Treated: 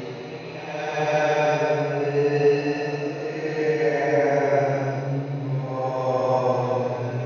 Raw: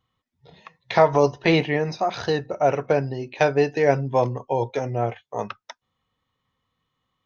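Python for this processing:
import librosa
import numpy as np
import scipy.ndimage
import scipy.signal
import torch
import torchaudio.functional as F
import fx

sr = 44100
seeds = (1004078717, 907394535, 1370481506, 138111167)

y = fx.echo_diffused(x, sr, ms=939, feedback_pct=54, wet_db=-11.5)
y = fx.paulstretch(y, sr, seeds[0], factor=6.6, window_s=0.25, from_s=3.23)
y = F.gain(torch.from_numpy(y), -2.5).numpy()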